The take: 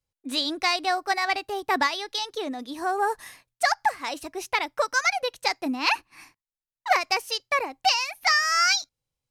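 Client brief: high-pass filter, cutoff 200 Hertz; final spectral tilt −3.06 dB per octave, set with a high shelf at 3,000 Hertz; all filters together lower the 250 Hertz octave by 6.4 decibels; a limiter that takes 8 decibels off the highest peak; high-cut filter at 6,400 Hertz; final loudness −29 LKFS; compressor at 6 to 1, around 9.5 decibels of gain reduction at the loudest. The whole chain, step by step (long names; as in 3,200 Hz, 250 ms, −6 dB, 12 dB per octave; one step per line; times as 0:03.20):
high-pass filter 200 Hz
low-pass filter 6,400 Hz
parametric band 250 Hz −7 dB
high-shelf EQ 3,000 Hz +4.5 dB
downward compressor 6 to 1, threshold −27 dBFS
level +4.5 dB
brickwall limiter −18 dBFS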